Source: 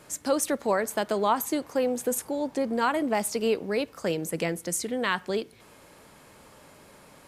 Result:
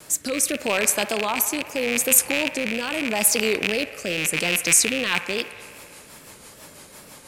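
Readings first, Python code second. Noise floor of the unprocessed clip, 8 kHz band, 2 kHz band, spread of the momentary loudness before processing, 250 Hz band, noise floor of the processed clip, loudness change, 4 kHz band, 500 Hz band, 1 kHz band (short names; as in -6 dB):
-54 dBFS, +13.5 dB, +10.5 dB, 5 LU, +1.0 dB, -47 dBFS, +7.0 dB, +11.5 dB, 0.0 dB, -2.0 dB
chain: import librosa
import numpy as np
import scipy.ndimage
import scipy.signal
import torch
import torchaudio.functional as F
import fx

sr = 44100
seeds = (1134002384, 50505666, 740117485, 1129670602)

p1 = fx.rattle_buzz(x, sr, strikes_db=-39.0, level_db=-16.0)
p2 = fx.over_compress(p1, sr, threshold_db=-30.0, ratio=-1.0)
p3 = p1 + (p2 * 10.0 ** (-0.5 / 20.0))
p4 = fx.rotary_switch(p3, sr, hz=0.8, then_hz=6.0, switch_at_s=4.71)
p5 = fx.wow_flutter(p4, sr, seeds[0], rate_hz=2.1, depth_cents=81.0)
p6 = fx.high_shelf(p5, sr, hz=3300.0, db=11.5)
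p7 = p6 + fx.echo_wet_bandpass(p6, sr, ms=60, feedback_pct=82, hz=1200.0, wet_db=-13, dry=0)
y = p7 * 10.0 ** (-1.5 / 20.0)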